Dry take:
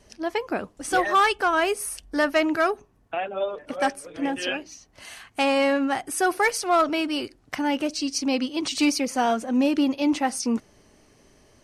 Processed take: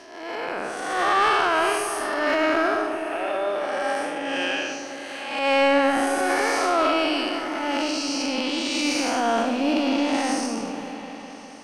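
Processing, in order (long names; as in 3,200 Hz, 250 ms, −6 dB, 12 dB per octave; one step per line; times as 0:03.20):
spectrum smeared in time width 293 ms
low-pass filter 11,000 Hz 12 dB per octave
spectral tilt +2 dB per octave
transient designer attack −12 dB, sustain +7 dB
mid-hump overdrive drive 10 dB, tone 2,100 Hz, clips at −13 dBFS
echo whose low-pass opens from repeat to repeat 202 ms, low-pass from 400 Hz, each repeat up 1 octave, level −6 dB
level +5.5 dB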